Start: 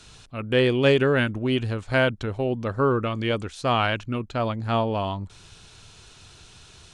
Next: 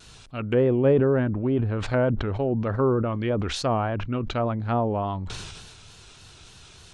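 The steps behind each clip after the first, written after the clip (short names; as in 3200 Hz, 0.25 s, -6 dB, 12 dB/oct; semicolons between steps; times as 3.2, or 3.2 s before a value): treble ducked by the level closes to 880 Hz, closed at -20 dBFS; vibrato 3.4 Hz 78 cents; sustainer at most 33 dB/s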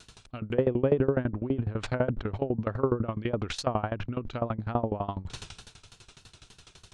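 dB-ramp tremolo decaying 12 Hz, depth 21 dB; gain +1.5 dB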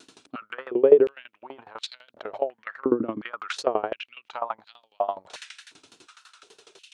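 stepped high-pass 2.8 Hz 290–3900 Hz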